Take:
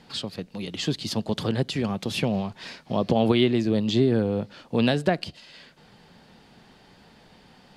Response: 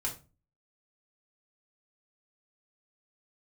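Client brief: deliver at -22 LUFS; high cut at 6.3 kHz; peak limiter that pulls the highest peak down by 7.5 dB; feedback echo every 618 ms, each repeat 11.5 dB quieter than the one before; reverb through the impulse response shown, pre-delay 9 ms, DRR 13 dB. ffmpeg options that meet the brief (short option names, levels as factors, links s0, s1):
-filter_complex "[0:a]lowpass=6300,alimiter=limit=0.178:level=0:latency=1,aecho=1:1:618|1236|1854:0.266|0.0718|0.0194,asplit=2[s0][s1];[1:a]atrim=start_sample=2205,adelay=9[s2];[s1][s2]afir=irnorm=-1:irlink=0,volume=0.168[s3];[s0][s3]amix=inputs=2:normalize=0,volume=1.78"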